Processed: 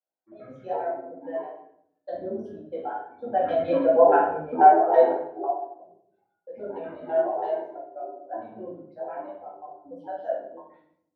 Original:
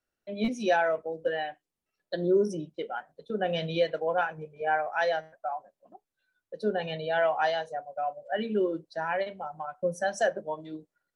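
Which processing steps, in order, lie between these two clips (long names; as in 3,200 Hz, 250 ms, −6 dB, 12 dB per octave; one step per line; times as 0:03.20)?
pitch shifter gated in a rhythm −10.5 semitones, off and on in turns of 81 ms
source passing by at 0:04.32, 8 m/s, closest 3 metres
in parallel at −2.5 dB: downward compressor, threshold −42 dBFS, peak gain reduction 16.5 dB
on the sum: band-pass filter sweep 700 Hz → 7,600 Hz, 0:10.52–0:11.07
rectangular room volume 160 cubic metres, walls mixed, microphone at 2.2 metres
level +7.5 dB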